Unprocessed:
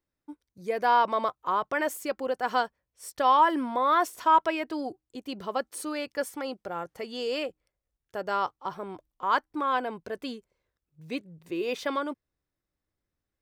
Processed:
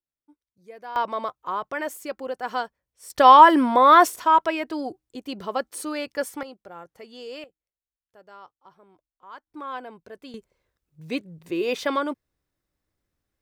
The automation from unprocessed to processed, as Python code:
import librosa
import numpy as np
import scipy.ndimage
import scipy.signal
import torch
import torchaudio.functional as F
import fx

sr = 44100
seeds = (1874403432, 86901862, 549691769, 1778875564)

y = fx.gain(x, sr, db=fx.steps((0.0, -14.0), (0.96, -1.5), (3.1, 10.0), (4.16, 3.0), (6.43, -7.0), (7.44, -18.0), (9.47, -7.0), (10.34, 5.0)))